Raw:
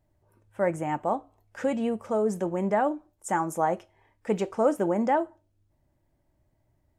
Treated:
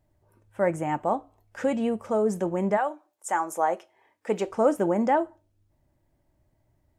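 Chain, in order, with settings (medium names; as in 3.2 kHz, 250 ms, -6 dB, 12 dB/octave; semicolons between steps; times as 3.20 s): 2.76–4.45 s: high-pass 710 Hz -> 240 Hz 12 dB/octave; trim +1.5 dB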